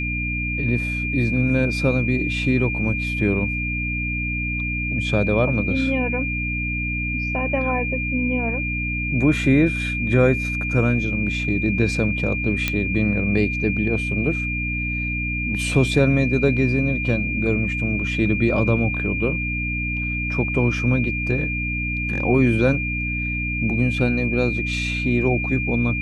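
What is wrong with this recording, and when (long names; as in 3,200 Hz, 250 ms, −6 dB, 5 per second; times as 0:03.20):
mains hum 60 Hz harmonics 5 −27 dBFS
whistle 2,400 Hz −25 dBFS
0:12.68: click −6 dBFS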